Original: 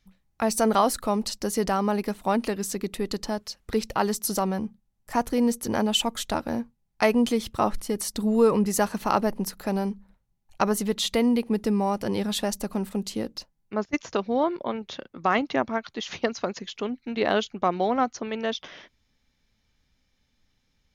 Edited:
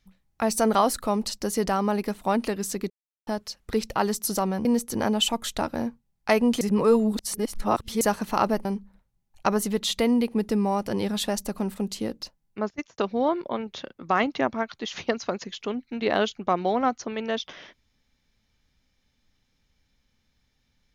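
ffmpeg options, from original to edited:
-filter_complex "[0:a]asplit=8[a][b][c][d][e][f][g][h];[a]atrim=end=2.9,asetpts=PTS-STARTPTS,afade=t=out:st=2.896:d=0.004:c=hsin[i];[b]atrim=start=2.9:end=3.27,asetpts=PTS-STARTPTS,volume=0[j];[c]atrim=start=3.27:end=4.652,asetpts=PTS-STARTPTS,afade=t=in:d=0.004:c=hsin[k];[d]atrim=start=5.378:end=7.342[l];[e]atrim=start=7.338:end=8.742,asetpts=PTS-STARTPTS,areverse[m];[f]atrim=start=8.738:end=9.382[n];[g]atrim=start=9.798:end=14.13,asetpts=PTS-STARTPTS,afade=t=out:st=3.952:d=0.38[o];[h]atrim=start=14.13,asetpts=PTS-STARTPTS,afade=t=in:d=0.004:c=hsin[p];[i][j][k]concat=n=3:v=0:a=1[q];[q][l]acrossfade=d=0.004:c1=hsin:c2=hsin[r];[r][m]acrossfade=d=0.004:c1=hsin:c2=hsin[s];[s][n]acrossfade=d=0.004:c1=hsin:c2=hsin[t];[o][p]concat=n=2:v=0:a=1[u];[t][u]acrossfade=d=0.004:c1=hsin:c2=hsin"

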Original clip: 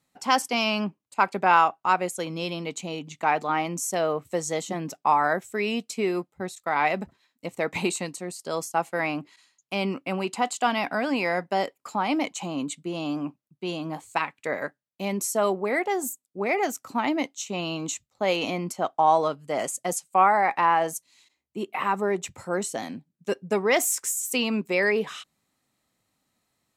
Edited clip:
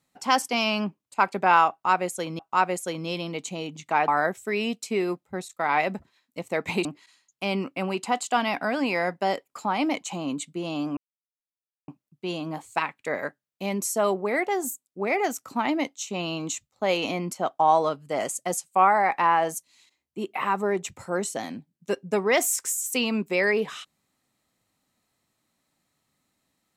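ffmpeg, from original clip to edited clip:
-filter_complex "[0:a]asplit=5[a][b][c][d][e];[a]atrim=end=2.392[f];[b]atrim=start=1.708:end=3.402[g];[c]atrim=start=5.148:end=7.922[h];[d]atrim=start=9.148:end=13.27,asetpts=PTS-STARTPTS,afade=t=out:st=4.118:d=0.004:c=hsin,apad=pad_dur=0.91[i];[e]atrim=start=13.27,asetpts=PTS-STARTPTS,afade=t=in:d=0.004:c=hsin[j];[f][g]acrossfade=d=0.004:c1=hsin:c2=hsin[k];[k][h]acrossfade=d=0.004:c1=hsin:c2=hsin[l];[i][j]concat=n=2:v=0:a=1[m];[l][m]acrossfade=d=0.004:c1=hsin:c2=hsin"

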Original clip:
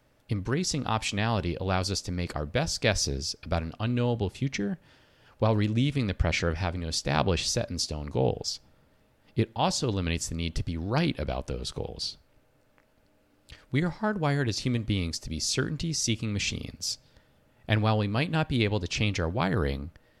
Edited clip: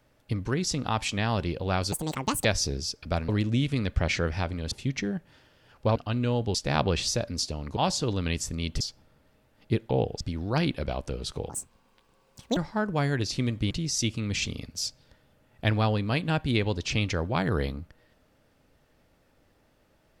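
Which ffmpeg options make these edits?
-filter_complex "[0:a]asplit=14[a][b][c][d][e][f][g][h][i][j][k][l][m][n];[a]atrim=end=1.924[o];[b]atrim=start=1.92:end=2.85,asetpts=PTS-STARTPTS,asetrate=78057,aresample=44100,atrim=end_sample=23171,asetpts=PTS-STARTPTS[p];[c]atrim=start=2.846:end=3.692[q];[d]atrim=start=5.518:end=6.952[r];[e]atrim=start=4.278:end=5.522[s];[f]atrim=start=3.688:end=4.282[t];[g]atrim=start=6.948:end=8.172[u];[h]atrim=start=9.568:end=10.612[v];[i]atrim=start=8.468:end=9.572[w];[j]atrim=start=8.168:end=8.472[x];[k]atrim=start=10.608:end=11.904[y];[l]atrim=start=11.9:end=13.84,asetpts=PTS-STARTPTS,asetrate=79821,aresample=44100,atrim=end_sample=47267,asetpts=PTS-STARTPTS[z];[m]atrim=start=13.836:end=14.982[aa];[n]atrim=start=15.758[ab];[o][p]acrossfade=d=0.004:c1=hsin:c2=hsin[ac];[ac][q]acrossfade=d=0.004:c1=hsin:c2=hsin[ad];[ad][r]acrossfade=d=0.004:c1=hsin:c2=hsin[ae];[ae][s]acrossfade=d=0.004:c1=hsin:c2=hsin[af];[af][t]acrossfade=d=0.004:c1=hsin:c2=hsin[ag];[ag][u]acrossfade=d=0.004:c1=hsin:c2=hsin[ah];[ah][v]acrossfade=d=0.004:c1=hsin:c2=hsin[ai];[ai][w]acrossfade=d=0.004:c1=hsin:c2=hsin[aj];[aj][x]acrossfade=d=0.004:c1=hsin:c2=hsin[ak];[ak][y]acrossfade=d=0.004:c1=hsin:c2=hsin[al];[al][z]acrossfade=d=0.004:c1=hsin:c2=hsin[am];[am][aa]acrossfade=d=0.004:c1=hsin:c2=hsin[an];[an][ab]acrossfade=d=0.004:c1=hsin:c2=hsin"

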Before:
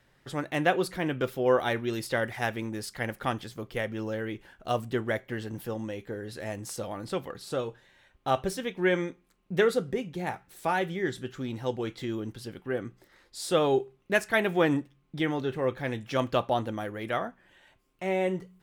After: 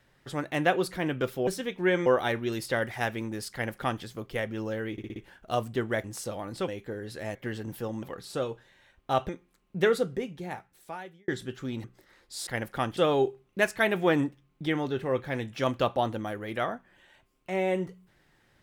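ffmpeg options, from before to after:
-filter_complex "[0:a]asplit=16[a][b][c][d][e][f][g][h][i][j][k][l][m][n][o][p];[a]atrim=end=1.472[q];[b]atrim=start=8.458:end=9.052[r];[c]atrim=start=1.468:end=4.392[s];[d]atrim=start=4.328:end=4.392[t];[e]atrim=start=4.328:end=4.392[u];[f]atrim=start=4.328:end=4.392[v];[g]atrim=start=4.328:end=5.212[w];[h]atrim=start=6.558:end=7.202[x];[i]atrim=start=5.888:end=6.562[y];[j]atrim=start=5.208:end=5.892[z];[k]atrim=start=7.198:end=8.462[aa];[l]atrim=start=9.048:end=11.04,asetpts=PTS-STARTPTS,afade=t=out:st=0.692:d=1.3[ab];[m]atrim=start=11.04:end=11.602,asetpts=PTS-STARTPTS,afade=t=in:d=0.004:c=hsin[ac];[n]atrim=start=12.868:end=13.502[ad];[o]atrim=start=2.938:end=3.442[ae];[p]atrim=start=13.498[af];[q][r]acrossfade=d=0.004:c1=hsin:c2=hsin[ag];[ag][s]acrossfade=d=0.004:c1=hsin:c2=hsin[ah];[ah][t]acrossfade=d=0.004:c1=hsin:c2=hsin[ai];[ai][u]acrossfade=d=0.004:c1=hsin:c2=hsin[aj];[aj][v]acrossfade=d=0.004:c1=hsin:c2=hsin[ak];[ak][w]acrossfade=d=0.004:c1=hsin:c2=hsin[al];[al][x]acrossfade=d=0.004:c1=hsin:c2=hsin[am];[am][y]acrossfade=d=0.004:c1=hsin:c2=hsin[an];[an][z]acrossfade=d=0.004:c1=hsin:c2=hsin[ao];[ao][aa]acrossfade=d=0.004:c1=hsin:c2=hsin[ap];[ab][ac]concat=n=2:v=0:a=1[aq];[ap][aq]acrossfade=d=0.004:c1=hsin:c2=hsin[ar];[ar][ad]acrossfade=d=0.004:c1=hsin:c2=hsin[as];[as][ae]acrossfade=d=0.004:c1=hsin:c2=hsin[at];[at][af]acrossfade=d=0.004:c1=hsin:c2=hsin"

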